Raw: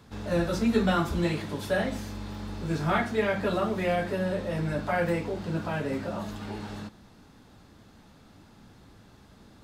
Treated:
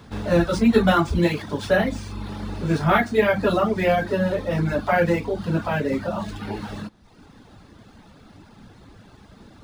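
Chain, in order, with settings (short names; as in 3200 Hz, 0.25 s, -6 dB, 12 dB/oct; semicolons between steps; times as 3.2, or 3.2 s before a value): reverb removal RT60 0.84 s; decimation joined by straight lines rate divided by 3×; gain +8.5 dB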